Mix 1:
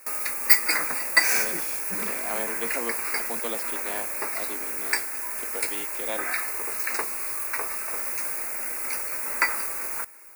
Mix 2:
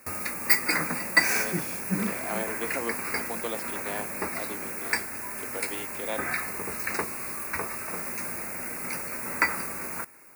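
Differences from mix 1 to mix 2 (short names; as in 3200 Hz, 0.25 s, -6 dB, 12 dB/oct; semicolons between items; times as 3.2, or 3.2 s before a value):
background: remove HPF 420 Hz 12 dB/oct; master: add high shelf 4100 Hz -5.5 dB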